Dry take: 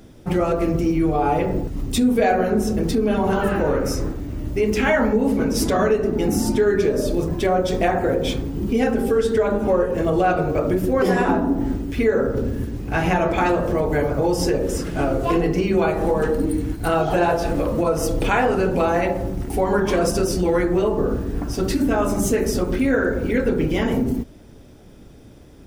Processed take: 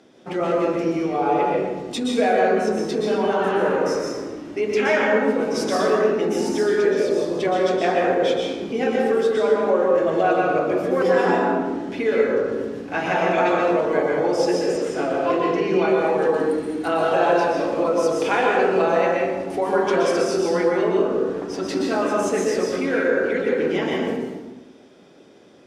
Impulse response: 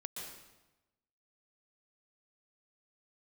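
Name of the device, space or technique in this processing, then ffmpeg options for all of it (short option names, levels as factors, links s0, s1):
supermarket ceiling speaker: -filter_complex "[0:a]asettb=1/sr,asplit=3[s0][s1][s2];[s0]atrim=end=14.764[s3];[s1]atrim=start=14.76:end=15.86,asetpts=PTS-STARTPTS,afade=t=in:d=0.004:c=qsin,afade=t=out:st=1.096:d=0.004:c=qsin,highshelf=f=9900:g=-11[s4];[s2]atrim=start=15.856[s5];[s3][s4]acrossfade=d=0.004:c1=hsin:c2=qsin[s6];[s6][s5]acrossfade=d=0.004:c1=qsin:c2=hsin,highpass=330,lowpass=5900[s7];[1:a]atrim=start_sample=2205[s8];[s7][s8]afir=irnorm=-1:irlink=0,volume=1.41"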